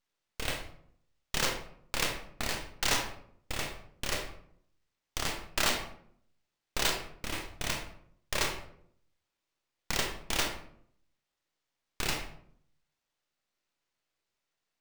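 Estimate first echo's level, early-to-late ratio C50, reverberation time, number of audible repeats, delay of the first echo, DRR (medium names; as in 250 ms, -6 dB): no echo, 6.5 dB, 0.65 s, no echo, no echo, 3.0 dB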